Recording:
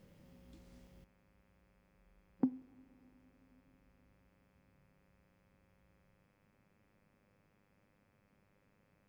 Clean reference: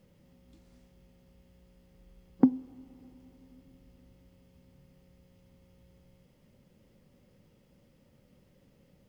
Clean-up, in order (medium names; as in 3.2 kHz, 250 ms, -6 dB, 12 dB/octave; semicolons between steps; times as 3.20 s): de-hum 101.1 Hz, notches 26; interpolate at 0.87/1.88/2.62 s, 3.8 ms; trim 0 dB, from 1.04 s +11.5 dB